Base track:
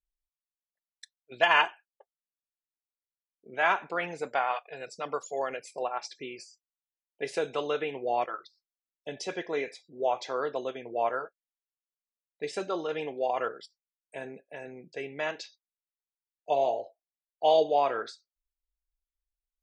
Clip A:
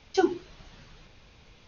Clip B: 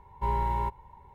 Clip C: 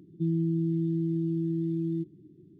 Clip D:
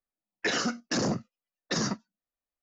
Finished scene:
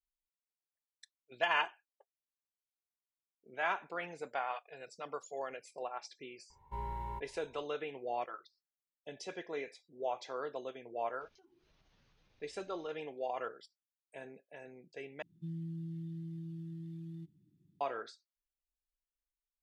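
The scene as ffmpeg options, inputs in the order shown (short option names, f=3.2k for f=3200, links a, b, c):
-filter_complex "[0:a]volume=-9dB[a];[1:a]acompressor=threshold=-51dB:ratio=6:attack=3.2:release=140:knee=1:detection=peak[b];[3:a]firequalizer=gain_entry='entry(190,0);entry(360,-13);entry(520,-23);entry(820,6)':delay=0.05:min_phase=1[c];[a]asplit=2[d][e];[d]atrim=end=15.224[f];[c]atrim=end=2.59,asetpts=PTS-STARTPTS,volume=-12.5dB[g];[e]atrim=start=17.806[h];[2:a]atrim=end=1.14,asetpts=PTS-STARTPTS,volume=-12.5dB,afade=t=in:d=0.004:c=hsin,afade=t=out:st=1.136:d=0.004:c=hsin,adelay=286650S[i];[b]atrim=end=1.67,asetpts=PTS-STARTPTS,volume=-15.5dB,afade=t=in:d=0.004:c=hsin,afade=t=out:st=1.666:d=0.004:c=hsin,adelay=11210[j];[f][g]acrossfade=d=0.004:c1=hsin:c2=hsin[k];[k][h]acrossfade=d=0.004:c1=hsin:c2=hsin[l];[l][i][j]amix=inputs=3:normalize=0"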